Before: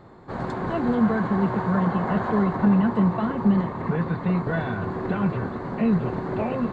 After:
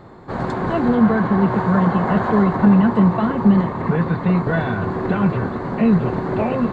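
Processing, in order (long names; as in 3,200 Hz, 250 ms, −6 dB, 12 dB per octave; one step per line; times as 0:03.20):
0:00.88–0:01.51: high-frequency loss of the air 51 metres
level +6 dB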